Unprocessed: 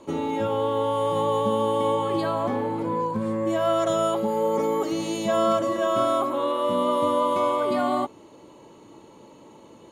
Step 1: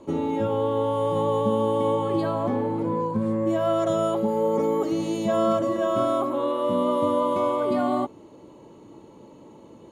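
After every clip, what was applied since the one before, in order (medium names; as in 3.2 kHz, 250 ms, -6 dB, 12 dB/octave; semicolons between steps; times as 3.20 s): tilt shelf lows +4.5 dB, about 730 Hz; trim -1 dB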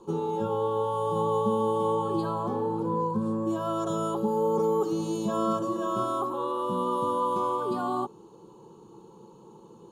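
static phaser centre 410 Hz, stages 8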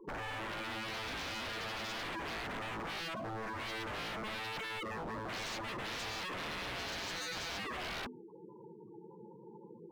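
spectral gate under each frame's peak -10 dB strong; hum notches 50/100/150/200/250 Hz; wavefolder -34.5 dBFS; trim -1.5 dB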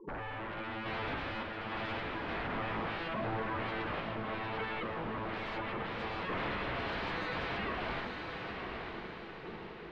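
random-step tremolo; distance through air 430 m; on a send: echo that smears into a reverb 960 ms, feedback 46%, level -4 dB; on the sum: trim +7 dB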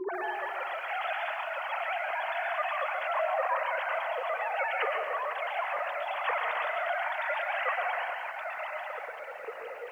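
formants replaced by sine waves; on a send at -4.5 dB: reverberation RT60 1.1 s, pre-delay 107 ms; on the sum: bit-crushed delay 136 ms, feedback 35%, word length 10-bit, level -11 dB; trim +4 dB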